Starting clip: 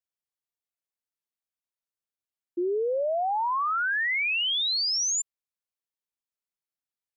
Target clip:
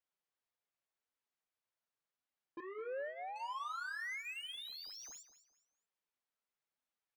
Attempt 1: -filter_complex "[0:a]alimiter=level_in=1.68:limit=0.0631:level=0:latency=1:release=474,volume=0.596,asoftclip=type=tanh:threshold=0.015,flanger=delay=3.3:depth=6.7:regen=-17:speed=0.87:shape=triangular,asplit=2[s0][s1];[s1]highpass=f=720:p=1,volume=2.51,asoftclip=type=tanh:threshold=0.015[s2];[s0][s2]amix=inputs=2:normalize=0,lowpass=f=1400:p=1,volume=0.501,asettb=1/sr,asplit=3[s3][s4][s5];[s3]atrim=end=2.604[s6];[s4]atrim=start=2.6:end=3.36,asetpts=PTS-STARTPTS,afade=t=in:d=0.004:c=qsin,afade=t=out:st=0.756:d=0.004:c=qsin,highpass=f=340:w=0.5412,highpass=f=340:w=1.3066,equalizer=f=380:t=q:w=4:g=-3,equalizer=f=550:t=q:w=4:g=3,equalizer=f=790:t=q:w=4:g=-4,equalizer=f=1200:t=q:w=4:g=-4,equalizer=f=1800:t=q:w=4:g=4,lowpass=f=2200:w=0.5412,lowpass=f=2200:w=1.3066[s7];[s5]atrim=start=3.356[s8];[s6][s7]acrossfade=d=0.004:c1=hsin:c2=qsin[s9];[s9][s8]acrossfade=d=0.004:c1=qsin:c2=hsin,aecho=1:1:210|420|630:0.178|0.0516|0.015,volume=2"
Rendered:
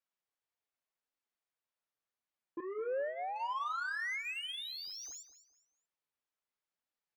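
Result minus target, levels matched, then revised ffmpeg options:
saturation: distortion -4 dB
-filter_complex "[0:a]alimiter=level_in=1.68:limit=0.0631:level=0:latency=1:release=474,volume=0.596,asoftclip=type=tanh:threshold=0.00596,flanger=delay=3.3:depth=6.7:regen=-17:speed=0.87:shape=triangular,asplit=2[s0][s1];[s1]highpass=f=720:p=1,volume=2.51,asoftclip=type=tanh:threshold=0.015[s2];[s0][s2]amix=inputs=2:normalize=0,lowpass=f=1400:p=1,volume=0.501,asettb=1/sr,asplit=3[s3][s4][s5];[s3]atrim=end=2.604[s6];[s4]atrim=start=2.6:end=3.36,asetpts=PTS-STARTPTS,afade=t=in:d=0.004:c=qsin,afade=t=out:st=0.756:d=0.004:c=qsin,highpass=f=340:w=0.5412,highpass=f=340:w=1.3066,equalizer=f=380:t=q:w=4:g=-3,equalizer=f=550:t=q:w=4:g=3,equalizer=f=790:t=q:w=4:g=-4,equalizer=f=1200:t=q:w=4:g=-4,equalizer=f=1800:t=q:w=4:g=4,lowpass=f=2200:w=0.5412,lowpass=f=2200:w=1.3066[s7];[s5]atrim=start=3.356[s8];[s6][s7]acrossfade=d=0.004:c1=hsin:c2=qsin[s9];[s9][s8]acrossfade=d=0.004:c1=qsin:c2=hsin,aecho=1:1:210|420|630:0.178|0.0516|0.015,volume=2"

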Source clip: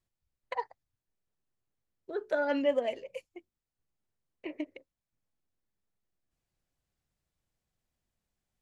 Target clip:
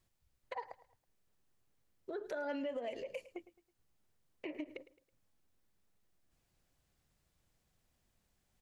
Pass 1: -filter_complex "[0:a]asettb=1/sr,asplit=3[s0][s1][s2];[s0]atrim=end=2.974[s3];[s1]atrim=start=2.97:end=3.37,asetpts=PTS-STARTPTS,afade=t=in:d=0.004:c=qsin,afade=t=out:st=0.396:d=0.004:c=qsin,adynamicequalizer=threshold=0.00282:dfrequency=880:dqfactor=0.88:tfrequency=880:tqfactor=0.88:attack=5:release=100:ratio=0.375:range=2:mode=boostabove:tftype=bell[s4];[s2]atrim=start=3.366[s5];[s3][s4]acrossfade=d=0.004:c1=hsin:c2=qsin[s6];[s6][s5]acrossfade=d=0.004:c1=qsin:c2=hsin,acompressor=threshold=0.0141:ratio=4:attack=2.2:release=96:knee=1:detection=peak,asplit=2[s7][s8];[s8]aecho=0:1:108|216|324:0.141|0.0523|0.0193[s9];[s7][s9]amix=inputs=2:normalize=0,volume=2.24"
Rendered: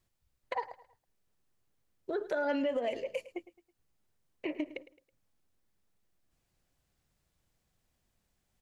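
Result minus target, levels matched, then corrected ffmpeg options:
compression: peak gain reduction -8 dB
-filter_complex "[0:a]asettb=1/sr,asplit=3[s0][s1][s2];[s0]atrim=end=2.974[s3];[s1]atrim=start=2.97:end=3.37,asetpts=PTS-STARTPTS,afade=t=in:d=0.004:c=qsin,afade=t=out:st=0.396:d=0.004:c=qsin,adynamicequalizer=threshold=0.00282:dfrequency=880:dqfactor=0.88:tfrequency=880:tqfactor=0.88:attack=5:release=100:ratio=0.375:range=2:mode=boostabove:tftype=bell[s4];[s2]atrim=start=3.366[s5];[s3][s4]acrossfade=d=0.004:c1=hsin:c2=qsin[s6];[s6][s5]acrossfade=d=0.004:c1=qsin:c2=hsin,acompressor=threshold=0.00422:ratio=4:attack=2.2:release=96:knee=1:detection=peak,asplit=2[s7][s8];[s8]aecho=0:1:108|216|324:0.141|0.0523|0.0193[s9];[s7][s9]amix=inputs=2:normalize=0,volume=2.24"

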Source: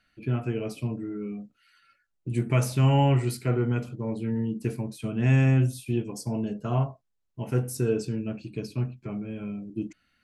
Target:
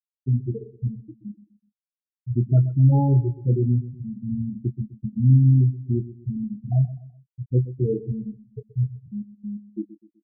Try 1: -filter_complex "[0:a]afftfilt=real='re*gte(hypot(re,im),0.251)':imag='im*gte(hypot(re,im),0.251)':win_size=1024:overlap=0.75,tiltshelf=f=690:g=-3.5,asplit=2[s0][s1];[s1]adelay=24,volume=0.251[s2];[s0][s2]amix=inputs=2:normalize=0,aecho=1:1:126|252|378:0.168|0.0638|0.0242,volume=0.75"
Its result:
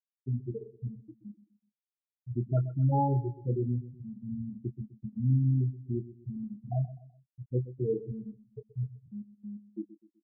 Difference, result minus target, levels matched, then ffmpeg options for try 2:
500 Hz band +5.5 dB
-filter_complex "[0:a]afftfilt=real='re*gte(hypot(re,im),0.251)':imag='im*gte(hypot(re,im),0.251)':win_size=1024:overlap=0.75,tiltshelf=f=690:g=8,asplit=2[s0][s1];[s1]adelay=24,volume=0.251[s2];[s0][s2]amix=inputs=2:normalize=0,aecho=1:1:126|252|378:0.168|0.0638|0.0242,volume=0.75"

